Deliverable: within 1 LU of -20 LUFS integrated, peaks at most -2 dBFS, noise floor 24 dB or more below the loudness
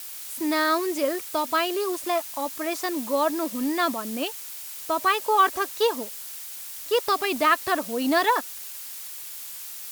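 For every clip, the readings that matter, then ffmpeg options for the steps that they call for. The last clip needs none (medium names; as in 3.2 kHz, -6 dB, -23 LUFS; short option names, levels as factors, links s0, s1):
noise floor -38 dBFS; noise floor target -50 dBFS; loudness -25.5 LUFS; peak level -7.5 dBFS; loudness target -20.0 LUFS
-> -af "afftdn=nr=12:nf=-38"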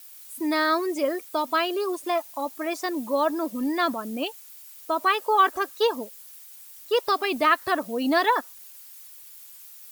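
noise floor -46 dBFS; noise floor target -49 dBFS
-> -af "afftdn=nr=6:nf=-46"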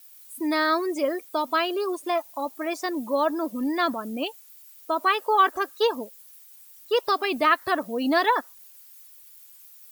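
noise floor -50 dBFS; loudness -25.0 LUFS; peak level -7.5 dBFS; loudness target -20.0 LUFS
-> -af "volume=1.78"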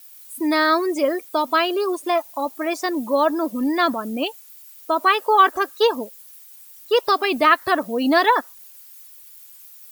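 loudness -20.0 LUFS; peak level -2.5 dBFS; noise floor -45 dBFS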